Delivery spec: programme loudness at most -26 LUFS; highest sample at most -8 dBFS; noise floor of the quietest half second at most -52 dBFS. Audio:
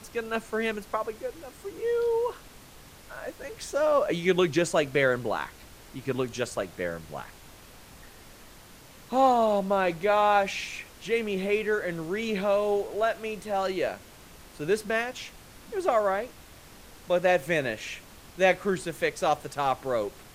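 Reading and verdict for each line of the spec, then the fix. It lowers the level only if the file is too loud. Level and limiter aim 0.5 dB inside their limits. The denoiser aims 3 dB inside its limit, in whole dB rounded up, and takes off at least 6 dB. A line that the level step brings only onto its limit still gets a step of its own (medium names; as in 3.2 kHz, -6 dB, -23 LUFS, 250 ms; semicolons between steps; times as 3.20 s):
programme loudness -27.5 LUFS: pass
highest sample -9.5 dBFS: pass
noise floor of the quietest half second -50 dBFS: fail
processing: noise reduction 6 dB, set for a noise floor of -50 dBFS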